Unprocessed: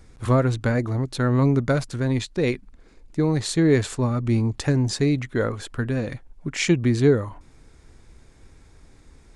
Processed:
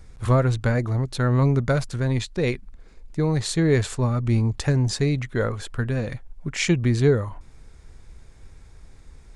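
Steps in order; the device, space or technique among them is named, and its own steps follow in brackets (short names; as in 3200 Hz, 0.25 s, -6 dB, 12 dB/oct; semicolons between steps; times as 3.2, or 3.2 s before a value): low shelf boost with a cut just above (low shelf 80 Hz +6.5 dB; bell 290 Hz -5.5 dB 0.61 oct)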